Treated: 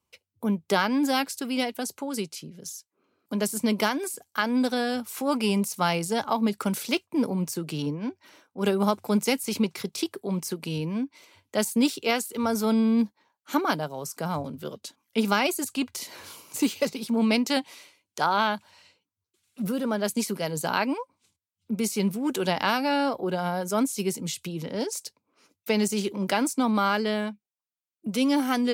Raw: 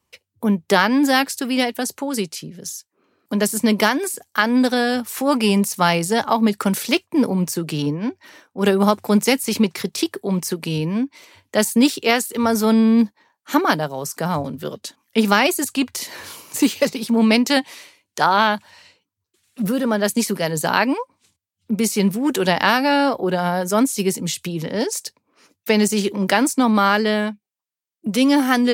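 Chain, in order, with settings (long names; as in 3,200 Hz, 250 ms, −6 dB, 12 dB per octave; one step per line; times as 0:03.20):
notch filter 1,800 Hz, Q 8.4
level −7.5 dB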